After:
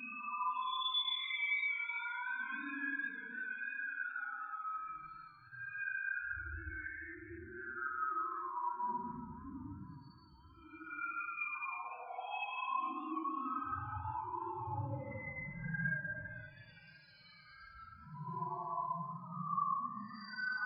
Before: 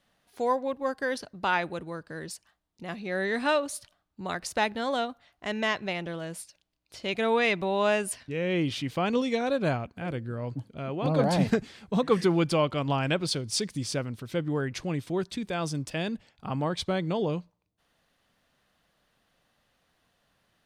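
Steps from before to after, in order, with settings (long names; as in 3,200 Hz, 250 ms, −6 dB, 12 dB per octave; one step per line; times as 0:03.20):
gate on every frequency bin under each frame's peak −10 dB weak
de-essing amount 85%
Bessel low-pass filter 5,200 Hz, order 2
parametric band 500 Hz −13 dB 1.5 octaves
downward compressor 12 to 1, threshold −45 dBFS, peak gain reduction 16 dB
spectral peaks only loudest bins 2
extreme stretch with random phases 6.5×, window 0.10 s, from 0:09.10
convolution reverb RT60 0.70 s, pre-delay 159 ms, DRR 9.5 dB
feedback echo with a swinging delay time 516 ms, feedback 51%, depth 130 cents, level −19 dB
level +17.5 dB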